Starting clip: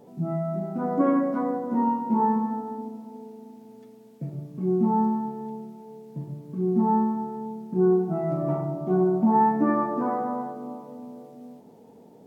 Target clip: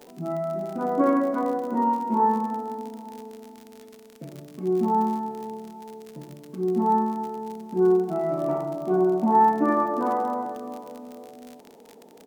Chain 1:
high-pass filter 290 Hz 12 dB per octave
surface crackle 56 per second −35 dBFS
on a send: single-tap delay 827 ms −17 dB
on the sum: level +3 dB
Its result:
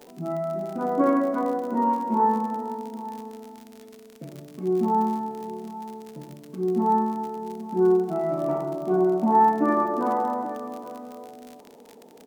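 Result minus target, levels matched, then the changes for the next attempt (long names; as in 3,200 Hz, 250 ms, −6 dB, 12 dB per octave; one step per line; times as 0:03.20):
echo-to-direct +10 dB
change: single-tap delay 827 ms −27 dB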